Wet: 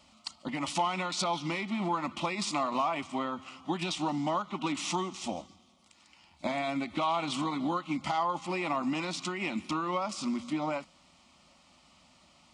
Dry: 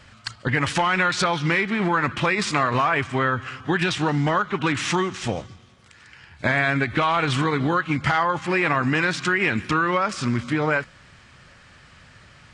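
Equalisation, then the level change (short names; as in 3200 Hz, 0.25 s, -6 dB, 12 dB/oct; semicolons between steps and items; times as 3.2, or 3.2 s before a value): HPF 150 Hz 6 dB/oct; fixed phaser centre 440 Hz, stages 6; -5.0 dB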